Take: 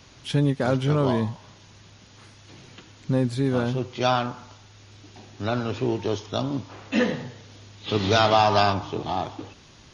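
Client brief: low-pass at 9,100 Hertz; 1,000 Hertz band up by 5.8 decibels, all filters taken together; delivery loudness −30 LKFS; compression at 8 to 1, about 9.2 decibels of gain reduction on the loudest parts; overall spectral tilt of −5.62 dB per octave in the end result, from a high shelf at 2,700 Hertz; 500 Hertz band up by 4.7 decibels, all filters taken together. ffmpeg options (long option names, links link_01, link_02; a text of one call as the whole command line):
ffmpeg -i in.wav -af "lowpass=9100,equalizer=frequency=500:width_type=o:gain=4,equalizer=frequency=1000:width_type=o:gain=7,highshelf=frequency=2700:gain=-4,acompressor=threshold=-18dB:ratio=8,volume=-4.5dB" out.wav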